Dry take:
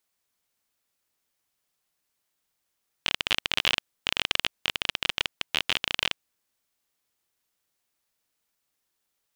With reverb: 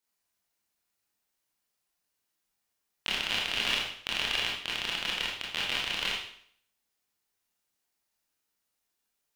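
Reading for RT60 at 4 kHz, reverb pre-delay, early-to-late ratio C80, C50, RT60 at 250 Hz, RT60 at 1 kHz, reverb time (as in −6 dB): 0.60 s, 23 ms, 6.5 dB, 2.0 dB, 0.60 s, 0.60 s, 0.60 s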